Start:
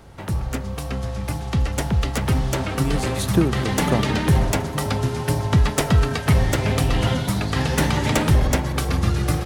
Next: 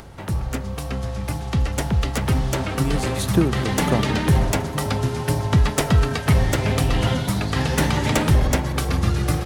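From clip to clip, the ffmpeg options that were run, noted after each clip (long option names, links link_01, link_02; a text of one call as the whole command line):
ffmpeg -i in.wav -af "acompressor=mode=upward:threshold=-36dB:ratio=2.5" out.wav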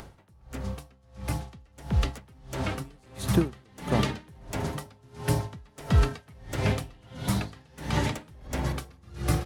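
ffmpeg -i in.wav -af "aeval=exprs='val(0)*pow(10,-32*(0.5-0.5*cos(2*PI*1.5*n/s))/20)':channel_layout=same,volume=-3dB" out.wav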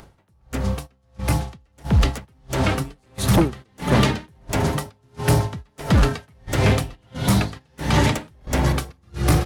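ffmpeg -i in.wav -af "agate=range=-13dB:threshold=-43dB:ratio=16:detection=peak,aeval=exprs='0.335*sin(PI/2*2.51*val(0)/0.335)':channel_layout=same,volume=-1dB" out.wav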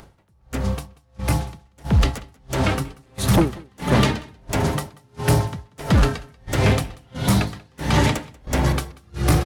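ffmpeg -i in.wav -af "aecho=1:1:187:0.0668" out.wav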